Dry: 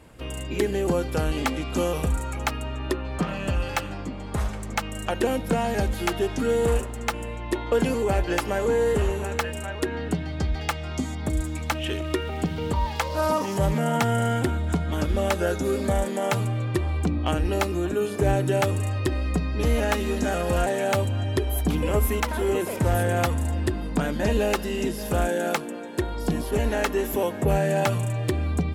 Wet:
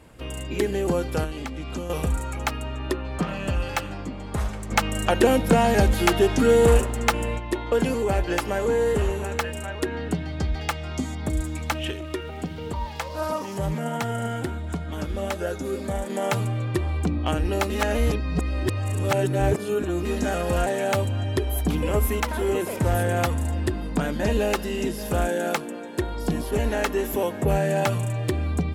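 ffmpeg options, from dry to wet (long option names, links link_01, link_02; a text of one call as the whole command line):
ffmpeg -i in.wav -filter_complex "[0:a]asettb=1/sr,asplit=3[link_01][link_02][link_03];[link_01]atrim=end=1.244[link_04];[link_02]atrim=start=1.24:end=1.9,asetpts=PTS-STARTPTS,afade=type=in:duration=0.004:curve=qsin,afade=type=out:start_time=0.656:duration=0.004:curve=qsin,acrossover=split=200|7300[link_05][link_06][link_07];[link_05]acompressor=threshold=-32dB:ratio=4[link_08];[link_06]acompressor=threshold=-34dB:ratio=4[link_09];[link_07]acompressor=threshold=-57dB:ratio=4[link_10];[link_08][link_09][link_10]amix=inputs=3:normalize=0[link_11];[link_03]atrim=start=1.896[link_12];[link_04][link_11]acrossfade=duration=0.004:curve1=hsin:curve2=qsin[link_13];[link_13][link_12]acrossfade=duration=0.004:curve1=qsin:curve2=hsin,asplit=3[link_14][link_15][link_16];[link_14]afade=type=out:start_time=4.7:duration=0.02[link_17];[link_15]acontrast=56,afade=type=in:start_time=4.7:duration=0.02,afade=type=out:start_time=7.38:duration=0.02[link_18];[link_16]afade=type=in:start_time=7.38:duration=0.02[link_19];[link_17][link_18][link_19]amix=inputs=3:normalize=0,asettb=1/sr,asplit=3[link_20][link_21][link_22];[link_20]atrim=end=11.914[link_23];[link_21]atrim=start=11.91:end=16.1,asetpts=PTS-STARTPTS,afade=type=in:duration=0.004:curve=qsin,afade=type=out:start_time=4.186:duration=0.004:curve=qsin,flanger=delay=1.4:depth=5.3:regen=78:speed=1.4:shape=triangular[link_24];[link_22]atrim=start=16.096[link_25];[link_23][link_24]acrossfade=duration=0.004:curve1=hsin:curve2=qsin[link_26];[link_26][link_25]acrossfade=duration=0.004:curve1=qsin:curve2=hsin,asplit=3[link_27][link_28][link_29];[link_27]atrim=end=17.702[link_30];[link_28]atrim=start=17.698:end=20.052,asetpts=PTS-STARTPTS,areverse[link_31];[link_29]atrim=start=20.048[link_32];[link_30][link_31]acrossfade=duration=0.004:curve1=hsin:curve2=hsin[link_33];[link_33][link_32]acrossfade=duration=0.004:curve1=hsin:curve2=hsin" out.wav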